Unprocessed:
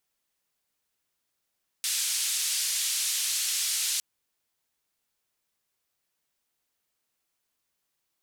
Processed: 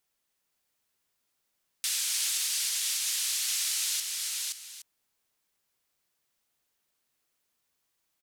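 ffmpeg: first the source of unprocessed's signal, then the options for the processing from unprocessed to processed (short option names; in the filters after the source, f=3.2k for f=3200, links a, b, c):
-f lavfi -i "anoisesrc=c=white:d=2.16:r=44100:seed=1,highpass=f=3200,lowpass=f=9800,volume=-18.4dB"
-filter_complex "[0:a]asplit=2[a][b];[b]aecho=0:1:522:0.531[c];[a][c]amix=inputs=2:normalize=0,alimiter=limit=-20.5dB:level=0:latency=1:release=278,asplit=2[d][e];[e]aecho=0:1:296:0.266[f];[d][f]amix=inputs=2:normalize=0"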